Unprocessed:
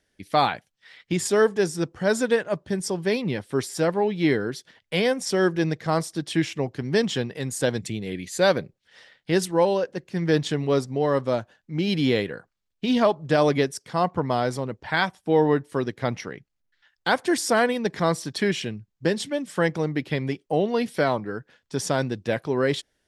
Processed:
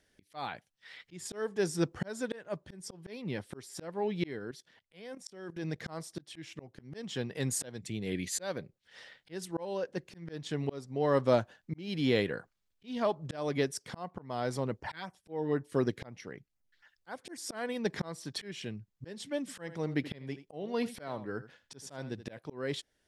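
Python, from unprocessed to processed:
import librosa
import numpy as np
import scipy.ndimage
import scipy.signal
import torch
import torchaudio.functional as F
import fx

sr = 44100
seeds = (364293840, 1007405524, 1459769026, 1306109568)

y = fx.level_steps(x, sr, step_db=15, at=(4.39, 5.8))
y = fx.filter_lfo_notch(y, sr, shape='sine', hz=4.0, low_hz=710.0, high_hz=3900.0, q=1.4, at=(14.78, 17.39))
y = fx.echo_single(y, sr, ms=81, db=-16.5, at=(19.4, 22.39))
y = fx.auto_swell(y, sr, attack_ms=732.0)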